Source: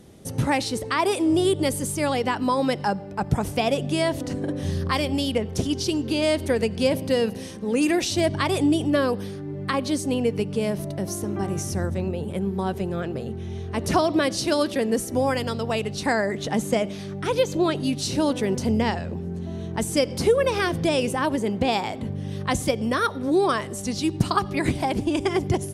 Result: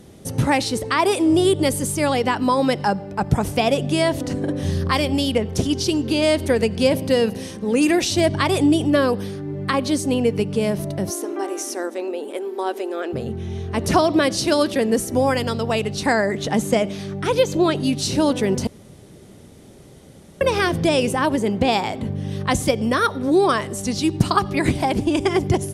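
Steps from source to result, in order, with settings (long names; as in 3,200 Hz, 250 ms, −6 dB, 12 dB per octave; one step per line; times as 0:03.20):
0:11.10–0:13.13: linear-phase brick-wall high-pass 240 Hz
0:18.67–0:20.41: fill with room tone
level +4 dB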